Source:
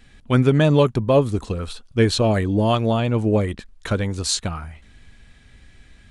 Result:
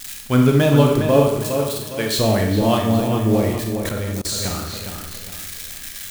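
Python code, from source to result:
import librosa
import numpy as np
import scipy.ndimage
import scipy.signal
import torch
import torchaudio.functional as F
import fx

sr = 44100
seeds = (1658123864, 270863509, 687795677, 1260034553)

p1 = x + 0.5 * 10.0 ** (-20.5 / 20.0) * np.diff(np.sign(x), prepend=np.sign(x[:1]))
p2 = fx.highpass(p1, sr, hz=790.0, slope=6, at=(1.28, 2.19))
p3 = fx.peak_eq(p2, sr, hz=2200.0, db=-8.0, octaves=2.3, at=(2.82, 3.29))
p4 = p3 + fx.echo_wet_lowpass(p3, sr, ms=409, feedback_pct=39, hz=3500.0, wet_db=-7.0, dry=0)
p5 = fx.rev_schroeder(p4, sr, rt60_s=0.75, comb_ms=28, drr_db=2.0)
p6 = fx.level_steps(p5, sr, step_db=23, at=(3.89, 4.44))
y = p6 * 10.0 ** (-1.0 / 20.0)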